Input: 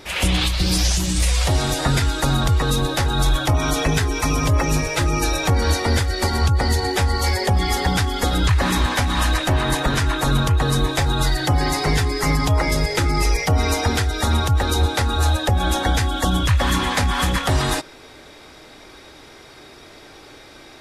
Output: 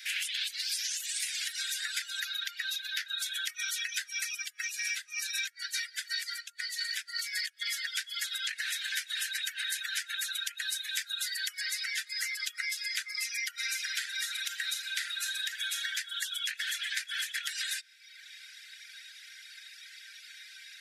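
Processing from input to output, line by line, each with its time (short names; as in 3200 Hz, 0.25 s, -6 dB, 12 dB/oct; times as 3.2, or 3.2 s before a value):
2.2–3.18 bell 8600 Hz -14 dB 0.58 oct
4.35–7.68 negative-ratio compressor -24 dBFS
8.81–11.61 high shelf 6700 Hz +5 dB
13.5–15.92 reverb throw, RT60 1.3 s, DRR 0 dB
whole clip: steep high-pass 1500 Hz 96 dB/oct; reverb removal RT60 0.88 s; compressor 5:1, threshold -32 dBFS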